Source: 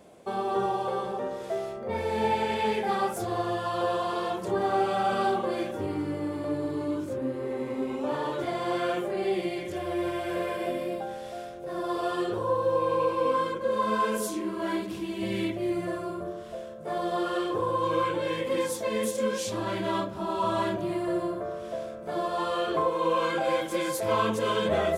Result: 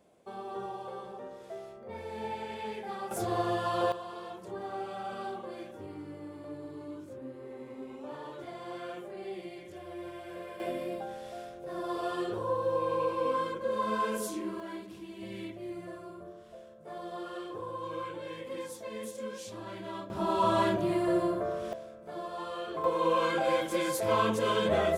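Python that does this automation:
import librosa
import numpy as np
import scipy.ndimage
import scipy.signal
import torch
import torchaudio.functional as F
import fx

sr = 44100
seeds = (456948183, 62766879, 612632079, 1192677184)

y = fx.gain(x, sr, db=fx.steps((0.0, -11.5), (3.11, -1.0), (3.92, -12.5), (10.6, -4.5), (14.6, -11.5), (20.1, 1.0), (21.73, -9.5), (22.84, -1.5)))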